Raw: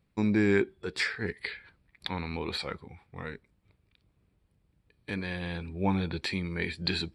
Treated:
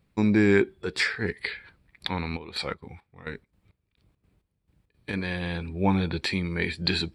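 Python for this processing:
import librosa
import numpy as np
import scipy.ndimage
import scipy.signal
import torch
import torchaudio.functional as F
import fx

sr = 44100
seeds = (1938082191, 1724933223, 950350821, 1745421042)

y = fx.step_gate(x, sr, bpm=170, pattern='xx...xx.', floor_db=-12.0, edge_ms=4.5, at=(2.36, 5.12), fade=0.02)
y = F.gain(torch.from_numpy(y), 4.5).numpy()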